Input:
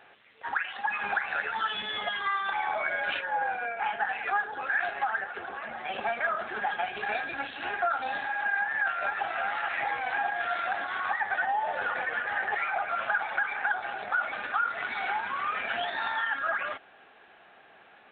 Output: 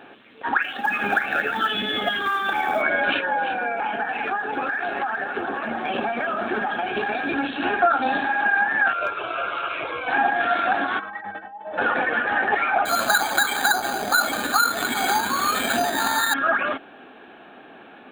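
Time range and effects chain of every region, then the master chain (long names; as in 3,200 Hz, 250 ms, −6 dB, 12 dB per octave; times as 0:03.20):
0:00.62–0:02.82: floating-point word with a short mantissa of 4 bits + parametric band 1,000 Hz −15 dB 0.23 octaves
0:03.32–0:07.43: downward compressor, threshold −31 dBFS + surface crackle 85 per second −61 dBFS + single-tap delay 343 ms −10.5 dB
0:08.93–0:10.08: phaser with its sweep stopped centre 1,200 Hz, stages 8 + hard clipping −24 dBFS
0:10.99–0:11.78: low-pass filter 1,900 Hz 6 dB per octave + compressor whose output falls as the input rises −34 dBFS, ratio −0.5 + stiff-string resonator 95 Hz, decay 0.25 s, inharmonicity 0.03
0:12.85–0:16.34: low-shelf EQ 78 Hz +10 dB + bad sample-rate conversion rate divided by 8×, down filtered, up hold
whole clip: parametric band 270 Hz +15 dB 1.1 octaves; notch filter 2,000 Hz, Q 9.1; level +8 dB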